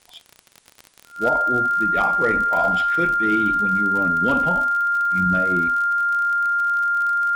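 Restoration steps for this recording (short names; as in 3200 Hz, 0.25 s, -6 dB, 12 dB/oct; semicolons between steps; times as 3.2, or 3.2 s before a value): clip repair -10.5 dBFS; de-click; notch 1400 Hz, Q 30; expander -43 dBFS, range -21 dB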